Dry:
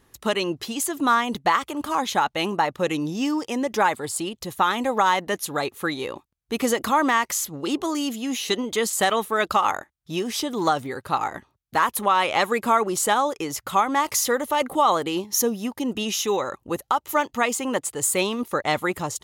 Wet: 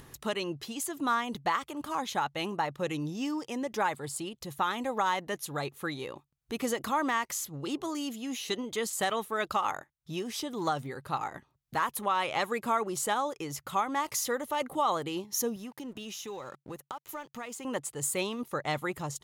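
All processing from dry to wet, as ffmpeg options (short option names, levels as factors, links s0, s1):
-filter_complex "[0:a]asettb=1/sr,asplit=3[s0][s1][s2];[s0]atrim=end=15.564[s3];[s1]atrim=start=15.56:end=17.65,asetpts=PTS-STARTPTS,afade=t=in:d=0.004:c=qsin,afade=t=out:st=2.086:d=0.004:c=qsin,highpass=74,acompressor=threshold=0.0316:ratio=2.5:attack=3.2:release=140:knee=1:detection=peak,aeval=exprs='sgn(val(0))*max(abs(val(0))-0.00335,0)':c=same[s4];[s2]atrim=start=17.646[s5];[s3][s4]acrossfade=d=0.004:c1=hsin:c2=qsin[s6];[s6][s5]acrossfade=d=0.004:c1=qsin:c2=hsin,equalizer=f=140:w=5.6:g=10,acompressor=mode=upward:threshold=0.0316:ratio=2.5,volume=0.355"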